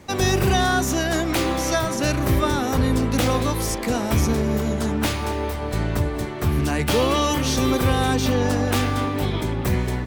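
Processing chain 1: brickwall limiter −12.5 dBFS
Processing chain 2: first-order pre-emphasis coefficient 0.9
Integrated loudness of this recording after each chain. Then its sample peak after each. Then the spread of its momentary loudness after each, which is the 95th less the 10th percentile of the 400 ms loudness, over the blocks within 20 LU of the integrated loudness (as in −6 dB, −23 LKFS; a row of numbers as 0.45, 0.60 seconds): −23.0, −31.5 LKFS; −12.5, −14.0 dBFS; 3, 8 LU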